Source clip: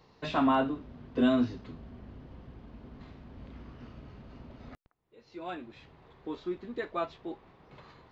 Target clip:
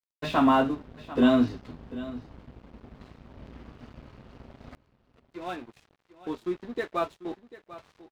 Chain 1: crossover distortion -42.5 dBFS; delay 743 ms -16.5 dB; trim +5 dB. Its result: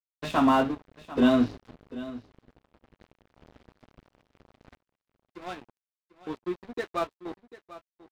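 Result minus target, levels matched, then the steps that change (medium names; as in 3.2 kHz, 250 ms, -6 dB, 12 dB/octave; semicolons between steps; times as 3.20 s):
crossover distortion: distortion +6 dB
change: crossover distortion -51 dBFS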